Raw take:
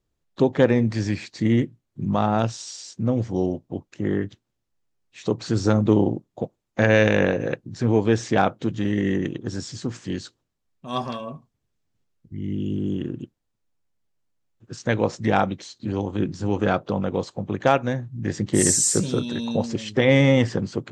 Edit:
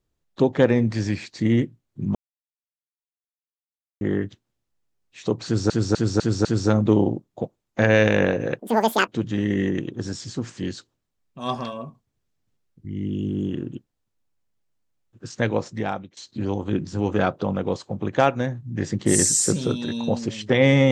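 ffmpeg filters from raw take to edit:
-filter_complex "[0:a]asplit=10[s0][s1][s2][s3][s4][s5][s6][s7][s8][s9];[s0]atrim=end=2.15,asetpts=PTS-STARTPTS,afade=t=out:st=2.146:d=0.004:c=hsin[s10];[s1]atrim=start=2.15:end=4.01,asetpts=PTS-STARTPTS,volume=0[s11];[s2]atrim=start=4.01:end=5.702,asetpts=PTS-STARTPTS,afade=t=in:d=0.004:c=hsin[s12];[s3]atrim=start=5.448:end=5.702[s13];[s4]atrim=start=5.448:end=5.702[s14];[s5]atrim=start=5.448:end=5.702[s15];[s6]atrim=start=5.448:end=7.594[s16];[s7]atrim=start=7.59:end=8.55,asetpts=PTS-STARTPTS,asetrate=86877,aresample=44100,atrim=end_sample=21490,asetpts=PTS-STARTPTS[s17];[s8]atrim=start=8.546:end=15.64,asetpts=PTS-STARTPTS,afade=t=out:st=6.324:d=0.77:silence=0.1[s18];[s9]atrim=start=15.64,asetpts=PTS-STARTPTS,afade=t=in:d=0.004:c=hsin:silence=0.1[s19];[s10][s11][s12]concat=n=3:v=0:a=1[s20];[s20][s13]acrossfade=d=0.004:c1=hsin:c2=hsin[s21];[s21][s14]acrossfade=d=0.004:c1=hsin:c2=hsin[s22];[s22][s15]acrossfade=d=0.004:c1=hsin:c2=hsin[s23];[s23][s16]acrossfade=d=0.004:c1=hsin:c2=hsin[s24];[s24][s17]acrossfade=d=0.004:c1=hsin:c2=hsin[s25];[s18][s19]concat=n=2:v=0:a=1[s26];[s25][s26]acrossfade=d=0.004:c1=hsin:c2=hsin"

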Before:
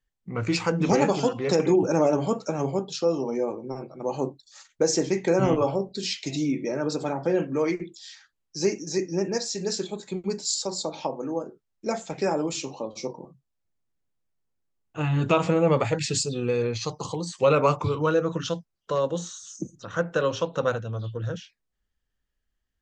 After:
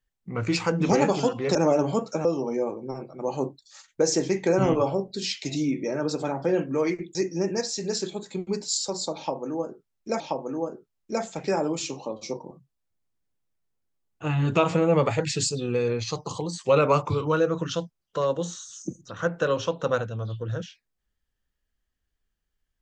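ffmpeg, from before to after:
-filter_complex "[0:a]asplit=5[s0][s1][s2][s3][s4];[s0]atrim=end=1.552[s5];[s1]atrim=start=1.888:end=2.592[s6];[s2]atrim=start=3.058:end=7.962[s7];[s3]atrim=start=8.918:end=11.972[s8];[s4]atrim=start=10.938[s9];[s5][s6]acrossfade=d=0.004:c1=hsin:c2=hsin[s10];[s10][s7]acrossfade=d=0.004:c1=hsin:c2=hsin[s11];[s11][s8]acrossfade=d=0.004:c1=hsin:c2=hsin[s12];[s12][s9]acrossfade=d=0.004:c1=hsin:c2=hsin"

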